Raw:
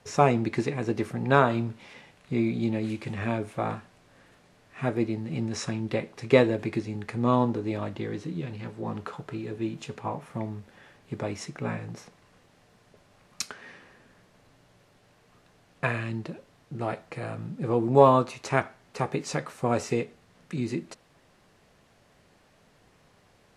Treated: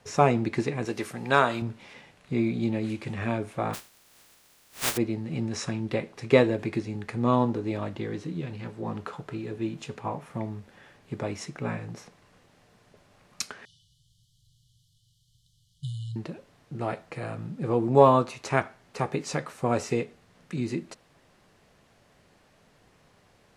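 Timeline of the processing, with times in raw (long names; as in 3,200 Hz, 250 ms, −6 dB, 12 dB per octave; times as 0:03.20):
0:00.85–0:01.62: spectral tilt +2.5 dB per octave
0:03.73–0:04.96: compressing power law on the bin magnitudes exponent 0.12
0:13.65–0:16.16: linear-phase brick-wall band-stop 160–2,900 Hz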